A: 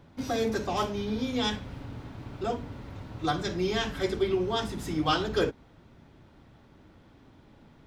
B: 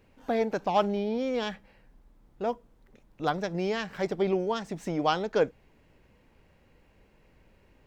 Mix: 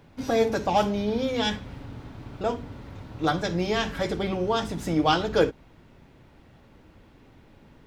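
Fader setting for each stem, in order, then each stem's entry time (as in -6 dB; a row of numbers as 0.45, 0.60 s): +0.5, +2.0 dB; 0.00, 0.00 s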